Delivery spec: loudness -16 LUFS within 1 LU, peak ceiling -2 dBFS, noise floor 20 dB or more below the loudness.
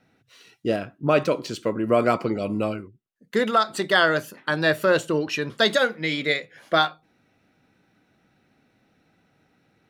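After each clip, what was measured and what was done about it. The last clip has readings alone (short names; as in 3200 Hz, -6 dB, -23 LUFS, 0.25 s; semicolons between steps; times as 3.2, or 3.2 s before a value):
loudness -23.0 LUFS; peak -7.0 dBFS; loudness target -16.0 LUFS
-> gain +7 dB; limiter -2 dBFS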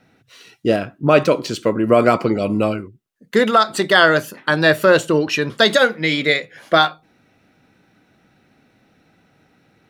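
loudness -16.5 LUFS; peak -2.0 dBFS; noise floor -59 dBFS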